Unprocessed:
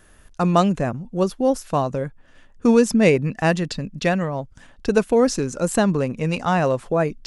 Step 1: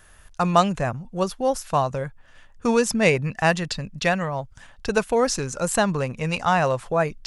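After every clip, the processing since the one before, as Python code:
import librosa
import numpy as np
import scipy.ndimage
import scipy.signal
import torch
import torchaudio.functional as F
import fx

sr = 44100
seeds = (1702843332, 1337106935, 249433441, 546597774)

y = fx.curve_eq(x, sr, hz=(120.0, 280.0, 840.0), db=(0, -9, 2))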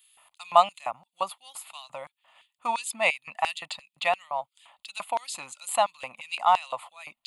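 y = fx.fixed_phaser(x, sr, hz=1600.0, stages=6)
y = fx.filter_lfo_highpass(y, sr, shape='square', hz=2.9, low_hz=720.0, high_hz=3800.0, q=1.3)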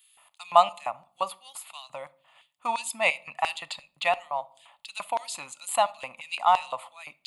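y = fx.room_shoebox(x, sr, seeds[0], volume_m3=620.0, walls='furnished', distance_m=0.3)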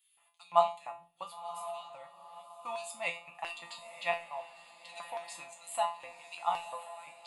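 y = fx.comb_fb(x, sr, f0_hz=170.0, decay_s=0.32, harmonics='all', damping=0.0, mix_pct=90)
y = fx.echo_diffused(y, sr, ms=1034, feedback_pct=41, wet_db=-12.0)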